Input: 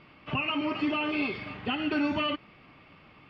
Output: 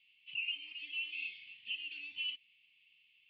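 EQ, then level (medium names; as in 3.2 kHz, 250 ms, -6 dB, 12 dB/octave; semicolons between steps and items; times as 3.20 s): elliptic high-pass 2.8 kHz, stop band 50 dB; distance through air 490 m; treble shelf 4.3 kHz -11.5 dB; +9.0 dB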